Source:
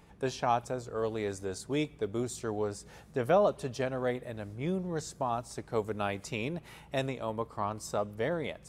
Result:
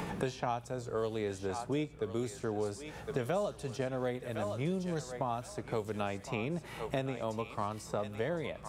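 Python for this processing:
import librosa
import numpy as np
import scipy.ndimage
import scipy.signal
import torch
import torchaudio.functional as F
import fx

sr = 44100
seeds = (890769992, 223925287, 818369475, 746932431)

y = fx.echo_thinned(x, sr, ms=1061, feedback_pct=34, hz=830.0, wet_db=-11.0)
y = fx.hpss(y, sr, part='percussive', gain_db=-5)
y = fx.band_squash(y, sr, depth_pct=100)
y = y * 10.0 ** (-1.5 / 20.0)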